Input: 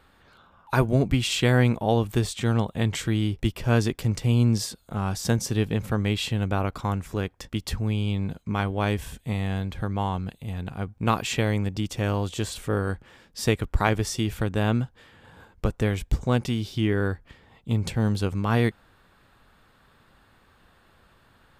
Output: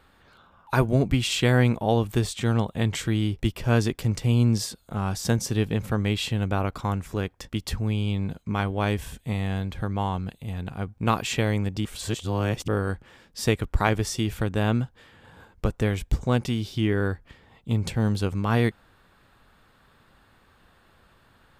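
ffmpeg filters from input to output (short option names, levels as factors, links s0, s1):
-filter_complex "[0:a]asplit=3[s0][s1][s2];[s0]atrim=end=11.852[s3];[s1]atrim=start=11.848:end=12.682,asetpts=PTS-STARTPTS,areverse[s4];[s2]atrim=start=12.678[s5];[s3][s4]acrossfade=d=0.004:c1=hsin:c2=hsin[s6];[s6][s5]acrossfade=d=0.004:c1=hsin:c2=hsin"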